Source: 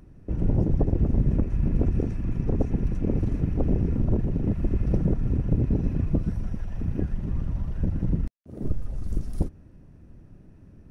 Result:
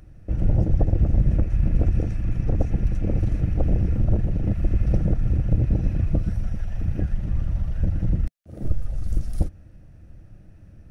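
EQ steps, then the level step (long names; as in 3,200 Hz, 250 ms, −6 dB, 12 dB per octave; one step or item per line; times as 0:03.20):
thirty-one-band graphic EQ 160 Hz −6 dB, 250 Hz −12 dB, 400 Hz −11 dB, 1,000 Hz −10 dB
+4.5 dB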